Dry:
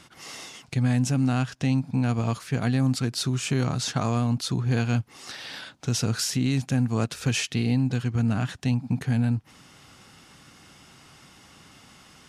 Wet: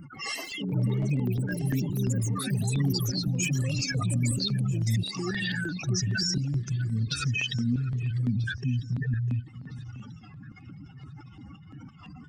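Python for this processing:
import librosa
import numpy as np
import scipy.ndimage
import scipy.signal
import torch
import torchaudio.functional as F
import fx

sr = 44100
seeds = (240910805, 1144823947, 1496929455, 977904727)

p1 = fx.spec_expand(x, sr, power=4.0)
p2 = fx.filter_lfo_notch(p1, sr, shape='square', hz=2.9, low_hz=240.0, high_hz=3600.0, q=0.7)
p3 = fx.over_compress(p2, sr, threshold_db=-36.0, ratio=-1.0)
p4 = p2 + F.gain(torch.from_numpy(p3), 1.5).numpy()
p5 = fx.echo_pitch(p4, sr, ms=129, semitones=7, count=3, db_per_echo=-6.0)
p6 = fx.echo_alternate(p5, sr, ms=649, hz=2300.0, feedback_pct=54, wet_db=-14.0)
p7 = fx.record_warp(p6, sr, rpm=33.33, depth_cents=100.0)
y = F.gain(torch.from_numpy(p7), -3.5).numpy()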